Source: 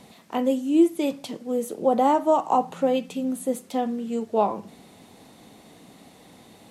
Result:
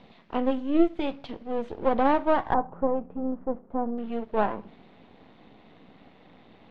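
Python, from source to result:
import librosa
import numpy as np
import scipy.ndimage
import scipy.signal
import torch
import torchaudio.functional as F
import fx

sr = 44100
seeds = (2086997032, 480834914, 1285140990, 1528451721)

y = np.where(x < 0.0, 10.0 ** (-12.0 / 20.0) * x, x)
y = fx.lowpass(y, sr, hz=fx.steps((0.0, 3700.0), (2.54, 1200.0), (3.98, 3300.0)), slope=24)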